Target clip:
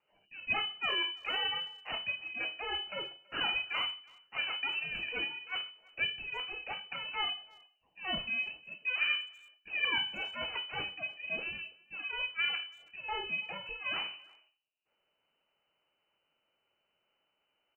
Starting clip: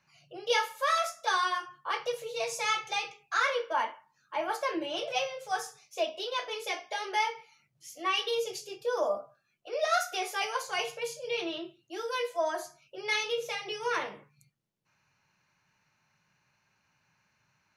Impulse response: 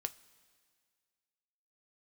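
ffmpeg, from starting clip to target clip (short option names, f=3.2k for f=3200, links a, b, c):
-filter_complex "[0:a]highpass=250,equalizer=f=600:w=3.5:g=5,acrossover=split=680|1800[a][b][c];[b]aeval=exprs='abs(val(0))':c=same[d];[a][d][c]amix=inputs=3:normalize=0,lowpass=f=2.6k:t=q:w=0.5098,lowpass=f=2.6k:t=q:w=0.6013,lowpass=f=2.6k:t=q:w=0.9,lowpass=f=2.6k:t=q:w=2.563,afreqshift=-3000,asplit=2[e][f];[f]adelay=330,highpass=300,lowpass=3.4k,asoftclip=type=hard:threshold=-26.5dB,volume=-24dB[g];[e][g]amix=inputs=2:normalize=0,volume=-3dB"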